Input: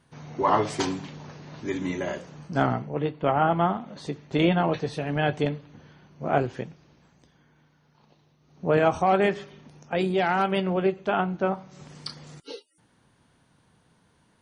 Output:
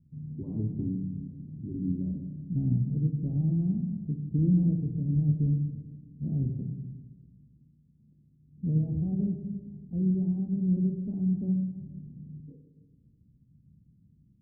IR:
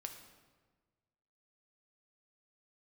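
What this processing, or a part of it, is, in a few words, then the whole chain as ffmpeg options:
club heard from the street: -filter_complex "[0:a]alimiter=limit=-13.5dB:level=0:latency=1:release=41,lowpass=frequency=210:width=0.5412,lowpass=frequency=210:width=1.3066[link_01];[1:a]atrim=start_sample=2205[link_02];[link_01][link_02]afir=irnorm=-1:irlink=0,volume=9dB"

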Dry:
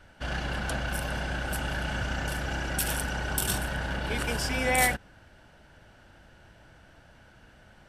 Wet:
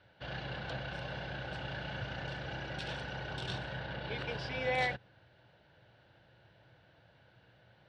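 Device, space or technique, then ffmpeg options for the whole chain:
guitar cabinet: -filter_complex "[0:a]asettb=1/sr,asplit=3[link_01][link_02][link_03];[link_01]atrim=end=3.794[link_04];[link_02]atrim=start=3.79:end=4.61,asetpts=PTS-STARTPTS,afade=type=in:duration=0.004:curve=qsin,afade=type=out:start_time=0.816:duration=0.004:curve=qsin,equalizer=frequency=7200:width_type=o:width=0.46:gain=-6[link_05];[link_03]atrim=start=4.606[link_06];[link_04][link_05]acrossfade=duration=0.004:curve1=hsin:curve2=qsin[link_07];[link_07][link_06]acrossfade=duration=0.004:curve1=qsin:curve2=hsin,highpass=100,equalizer=frequency=120:width_type=q:width=4:gain=9,equalizer=frequency=240:width_type=q:width=4:gain=-8,equalizer=frequency=510:width_type=q:width=4:gain=4,equalizer=frequency=1300:width_type=q:width=4:gain=-4,equalizer=frequency=3900:width_type=q:width=4:gain=6,lowpass=frequency=4400:width=0.5412,lowpass=frequency=4400:width=1.3066,volume=-8dB"

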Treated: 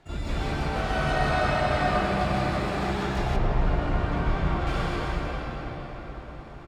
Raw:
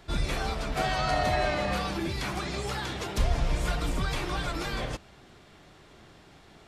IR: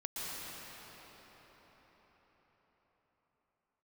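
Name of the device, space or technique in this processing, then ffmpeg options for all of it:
shimmer-style reverb: -filter_complex "[0:a]aemphasis=mode=reproduction:type=75fm,asplit=2[link_01][link_02];[link_02]asetrate=88200,aresample=44100,atempo=0.5,volume=-9dB[link_03];[link_01][link_03]amix=inputs=2:normalize=0[link_04];[1:a]atrim=start_sample=2205[link_05];[link_04][link_05]afir=irnorm=-1:irlink=0,asettb=1/sr,asplit=3[link_06][link_07][link_08];[link_06]atrim=end=3.364[link_09];[link_07]atrim=start=3.36:end=4.67,asetpts=PTS-STARTPTS,afade=type=in:duration=0.004:curve=qsin,afade=type=out:start_time=1.306:duration=0.004:curve=qsin,aemphasis=mode=reproduction:type=75kf[link_10];[link_08]atrim=start=4.666[link_11];[link_09][link_10]acrossfade=duration=0.004:curve1=hsin:curve2=qsin[link_12];[link_12][link_11]acrossfade=duration=0.004:curve1=qsin:curve2=hsin,asplit=2[link_13][link_14];[link_14]adelay=14,volume=-12dB[link_15];[link_13][link_15]amix=inputs=2:normalize=0"

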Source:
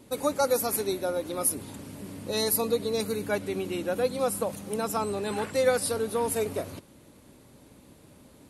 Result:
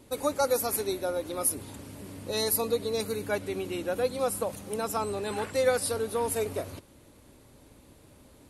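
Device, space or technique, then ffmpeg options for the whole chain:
low shelf boost with a cut just above: -af "lowshelf=frequency=79:gain=7.5,equalizer=frequency=180:width_type=o:width=1:gain=-5.5,volume=-1dB"

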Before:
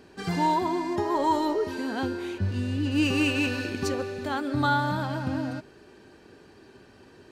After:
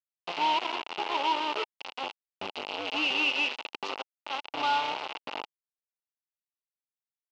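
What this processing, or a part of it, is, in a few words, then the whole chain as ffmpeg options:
hand-held game console: -af "acrusher=bits=3:mix=0:aa=0.000001,highpass=460,equalizer=frequency=860:width_type=q:width=4:gain=7,equalizer=frequency=1700:width_type=q:width=4:gain=-9,equalizer=frequency=2800:width_type=q:width=4:gain=10,lowpass=frequency=4500:width=0.5412,lowpass=frequency=4500:width=1.3066,volume=-6.5dB"

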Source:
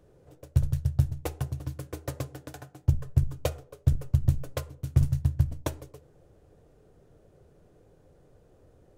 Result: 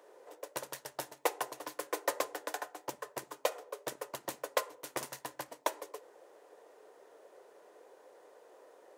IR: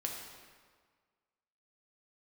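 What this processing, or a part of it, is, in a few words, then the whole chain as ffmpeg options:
laptop speaker: -af "highpass=frequency=430:width=0.5412,highpass=frequency=430:width=1.3066,equalizer=frequency=970:width_type=o:width=0.31:gain=8.5,equalizer=frequency=1900:width_type=o:width=0.28:gain=5.5,alimiter=limit=-21.5dB:level=0:latency=1:release=249,volume=6dB"

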